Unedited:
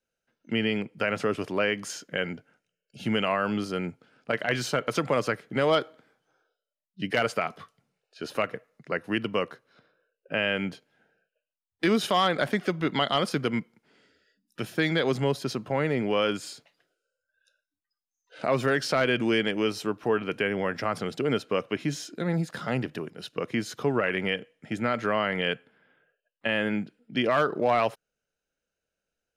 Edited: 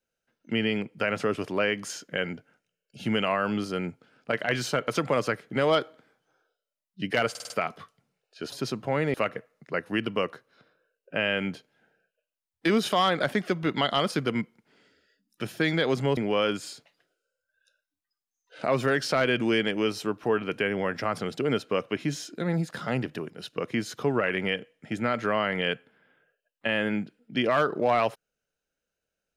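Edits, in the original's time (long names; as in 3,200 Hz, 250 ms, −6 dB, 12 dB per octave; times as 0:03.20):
0:07.30: stutter 0.05 s, 5 plays
0:15.35–0:15.97: move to 0:08.32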